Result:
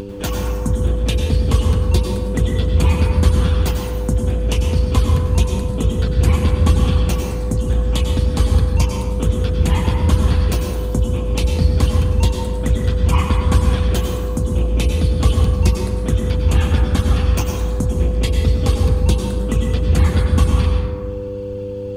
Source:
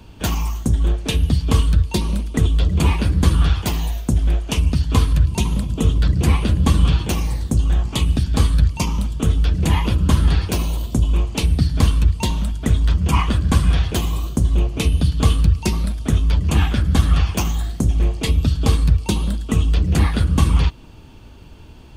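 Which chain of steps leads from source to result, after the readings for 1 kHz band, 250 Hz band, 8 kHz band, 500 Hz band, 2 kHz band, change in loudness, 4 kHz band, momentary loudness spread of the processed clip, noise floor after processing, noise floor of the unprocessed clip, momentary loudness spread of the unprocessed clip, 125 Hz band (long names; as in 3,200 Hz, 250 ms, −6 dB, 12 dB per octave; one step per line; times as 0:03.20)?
+0.5 dB, +0.5 dB, −0.5 dB, +7.5 dB, −0.5 dB, +1.0 dB, −1.0 dB, 6 LU, −25 dBFS, −40 dBFS, 5 LU, +1.5 dB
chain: reverb reduction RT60 0.73 s
hum with harmonics 100 Hz, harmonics 5, −32 dBFS 0 dB per octave
upward compression, threshold −22 dBFS
dense smooth reverb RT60 1.7 s, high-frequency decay 0.4×, pre-delay 85 ms, DRR 1 dB
level −1.5 dB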